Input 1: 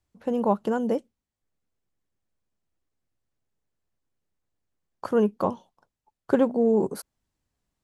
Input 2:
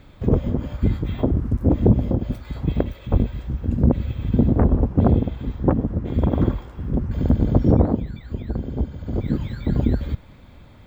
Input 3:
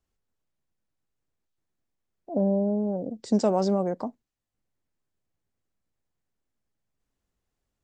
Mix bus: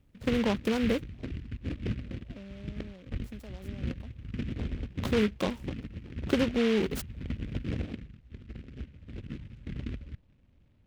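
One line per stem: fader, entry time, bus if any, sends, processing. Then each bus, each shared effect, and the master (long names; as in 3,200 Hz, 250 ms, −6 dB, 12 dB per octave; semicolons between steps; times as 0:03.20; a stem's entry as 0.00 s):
+2.5 dB, 0.00 s, no send, downward compressor 2.5 to 1, threshold −24 dBFS, peak gain reduction 6.5 dB
−17.0 dB, 0.00 s, no send, low-pass filter 1,200 Hz 24 dB per octave
−16.5 dB, 0.00 s, no send, downward compressor, threshold −23 dBFS, peak gain reduction 6.5 dB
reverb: not used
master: parametric band 890 Hz −9 dB 1.7 octaves; short delay modulated by noise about 2,100 Hz, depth 0.11 ms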